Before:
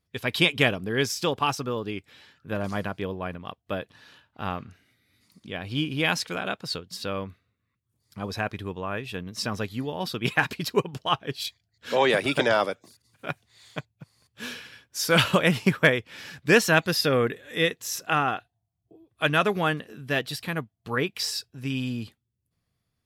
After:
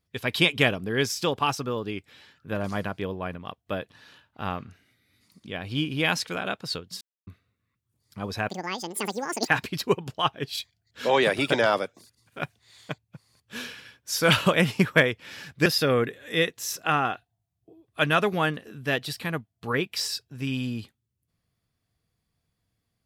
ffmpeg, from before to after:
-filter_complex "[0:a]asplit=6[s0][s1][s2][s3][s4][s5];[s0]atrim=end=7.01,asetpts=PTS-STARTPTS,afade=t=out:st=7.006:d=0.004:c=hsin[s6];[s1]atrim=start=7.01:end=7.27,asetpts=PTS-STARTPTS,volume=0[s7];[s2]atrim=start=7.27:end=8.494,asetpts=PTS-STARTPTS,afade=t=in:d=0.004:c=hsin[s8];[s3]atrim=start=8.49:end=10.35,asetpts=PTS-STARTPTS,asetrate=82908,aresample=44100[s9];[s4]atrim=start=10.346:end=16.532[s10];[s5]atrim=start=16.888[s11];[s6][s7][s8]concat=n=3:v=0:a=1[s12];[s12][s9]acrossfade=d=0.004:c1=hsin:c2=hsin[s13];[s13][s10]acrossfade=d=0.004:c1=hsin:c2=hsin[s14];[s14][s11]acrossfade=d=0.004:c1=hsin:c2=hsin"

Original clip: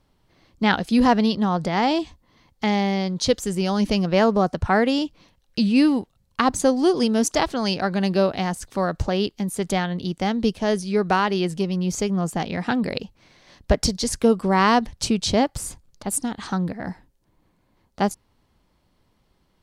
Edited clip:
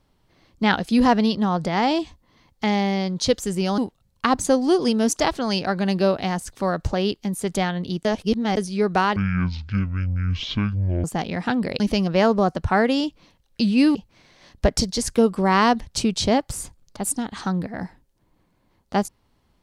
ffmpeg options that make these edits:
-filter_complex "[0:a]asplit=8[s0][s1][s2][s3][s4][s5][s6][s7];[s0]atrim=end=3.782[s8];[s1]atrim=start=5.928:end=10.202[s9];[s2]atrim=start=10.198:end=10.722,asetpts=PTS-STARTPTS,areverse[s10];[s3]atrim=start=10.718:end=11.314[s11];[s4]atrim=start=11.31:end=12.25,asetpts=PTS-STARTPTS,asetrate=22050,aresample=44100[s12];[s5]atrim=start=12.246:end=13.012[s13];[s6]atrim=start=3.778:end=5.932[s14];[s7]atrim=start=13.008[s15];[s8][s9]acrossfade=d=0.004:c1=hsin:c2=hsin[s16];[s16][s10]acrossfade=d=0.004:c1=hsin:c2=hsin[s17];[s17][s11]acrossfade=d=0.004:c1=hsin:c2=hsin[s18];[s18][s12]acrossfade=d=0.004:c1=hsin:c2=hsin[s19];[s19][s13]acrossfade=d=0.004:c1=hsin:c2=hsin[s20];[s20][s14]acrossfade=d=0.004:c1=hsin:c2=hsin[s21];[s21][s15]acrossfade=d=0.004:c1=hsin:c2=hsin"

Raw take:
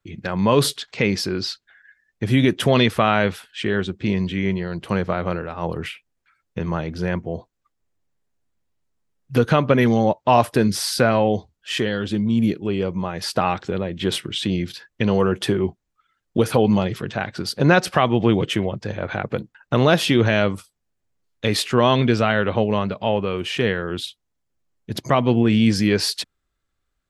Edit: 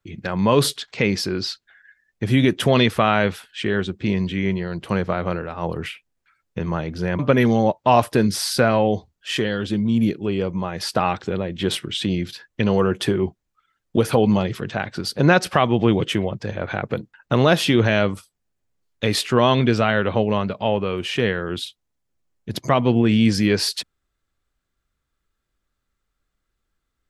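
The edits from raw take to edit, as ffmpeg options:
-filter_complex "[0:a]asplit=2[s0][s1];[s0]atrim=end=7.192[s2];[s1]atrim=start=9.598[s3];[s2][s3]acrossfade=d=0.004:c1=hsin:c2=hsin"

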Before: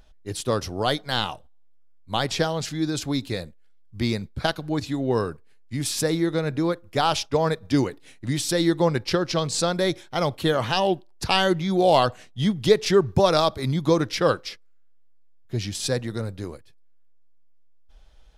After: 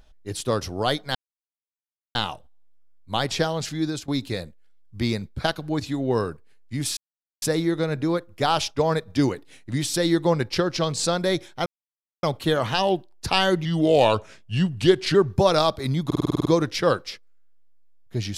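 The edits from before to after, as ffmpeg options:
-filter_complex "[0:a]asplit=15[s0][s1][s2][s3][s4][s5][s6][s7][s8][s9][s10][s11][s12][s13][s14];[s0]atrim=end=1.15,asetpts=PTS-STARTPTS,afade=t=out:st=1.146:d=0.004:c=hsin,apad=pad_dur=1[s15];[s1]atrim=start=1.15:end=3.08,asetpts=PTS-STARTPTS,afade=t=in:d=0.004:c=hsin,afade=t=out:st=1.66:d=0.27:c=qsin:silence=0.141254[s16];[s2]atrim=start=3.08:end=5.97,asetpts=PTS-STARTPTS,afade=t=in:d=0.004:c=hsin:silence=0.141254,afade=t=out:st=2.886:d=0.004:c=hsin,apad=pad_dur=0.45[s17];[s3]atrim=start=5.97:end=10.21,asetpts=PTS-STARTPTS,afade=t=in:d=0.004:c=hsin,afade=t=out:st=4.236:d=0.004:c=hsin,apad=pad_dur=0.57[s18];[s4]atrim=start=10.21:end=11.634,asetpts=PTS-STARTPTS,afade=t=in:d=0.004:c=hsin[s19];[s5]atrim=start=11.63:end=12.93,asetpts=PTS-STARTPTS,asetrate=38367,aresample=44100[s20];[s6]atrim=start=12.926:end=13.892[s21];[s7]atrim=start=13.838:end=13.892[s22];[s8]atrim=start=13.838:end=13.892[s23];[s9]atrim=start=13.838:end=13.892[s24];[s10]atrim=start=13.838:end=13.892[s25];[s11]atrim=start=13.838:end=13.892[s26];[s12]atrim=start=13.838:end=13.892[s27];[s13]atrim=start=13.838:end=13.892[s28];[s14]atrim=start=13.838[s29];[s15][s16][s17][s18][s19]concat=n=5:v=0:a=1[s30];[s30][s20]acrossfade=d=0.004:c1=hsin:c2=hsin[s31];[s31][s21]acrossfade=d=0.004:c1=hsin:c2=hsin[s32];[s32][s22]acrossfade=d=0.004:c1=hsin:c2=hsin[s33];[s33][s23]acrossfade=d=0.004:c1=hsin:c2=hsin[s34];[s34][s24]acrossfade=d=0.004:c1=hsin:c2=hsin[s35];[s35][s25]acrossfade=d=0.004:c1=hsin:c2=hsin[s36];[s36][s26]acrossfade=d=0.004:c1=hsin:c2=hsin[s37];[s37][s27]acrossfade=d=0.004:c1=hsin:c2=hsin[s38];[s38][s28]acrossfade=d=0.004:c1=hsin:c2=hsin[s39];[s39][s29]acrossfade=d=0.004:c1=hsin:c2=hsin"

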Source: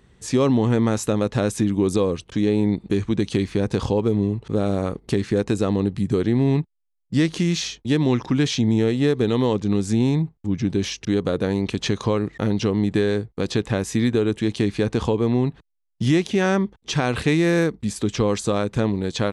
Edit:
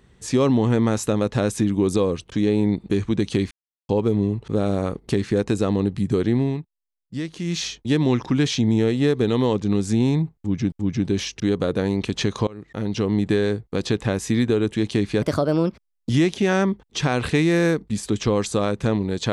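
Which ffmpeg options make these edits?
-filter_complex "[0:a]asplit=9[s0][s1][s2][s3][s4][s5][s6][s7][s8];[s0]atrim=end=3.51,asetpts=PTS-STARTPTS,afade=t=out:st=3.506:d=0.004:c=hsin[s9];[s1]atrim=start=3.51:end=3.89,asetpts=PTS-STARTPTS,volume=0[s10];[s2]atrim=start=3.89:end=6.59,asetpts=PTS-STARTPTS,afade=t=in:d=0.004:c=hsin,afade=t=out:st=2.45:d=0.25:silence=0.334965[s11];[s3]atrim=start=6.59:end=7.39,asetpts=PTS-STARTPTS,volume=0.335[s12];[s4]atrim=start=7.39:end=10.722,asetpts=PTS-STARTPTS,afade=t=in:d=0.25:silence=0.334965[s13];[s5]atrim=start=10.368:end=12.12,asetpts=PTS-STARTPTS,afade=t=out:st=1.748:d=0.004:c=hsin:silence=0.0668344[s14];[s6]atrim=start=12.12:end=14.874,asetpts=PTS-STARTPTS,afade=t=in:d=0.65:silence=0.0668344[s15];[s7]atrim=start=14.87:end=16.02,asetpts=PTS-STARTPTS,asetrate=58212,aresample=44100,atrim=end_sample=38420,asetpts=PTS-STARTPTS[s16];[s8]atrim=start=16.016[s17];[s9][s10][s11][s12][s13]concat=n=5:v=0:a=1[s18];[s14][s15]concat=n=2:v=0:a=1[s19];[s18][s19]acrossfade=d=0.004:c1=hsin:c2=hsin[s20];[s20][s16]acrossfade=d=0.004:c1=hsin:c2=hsin[s21];[s21][s17]acrossfade=d=0.004:c1=hsin:c2=hsin"

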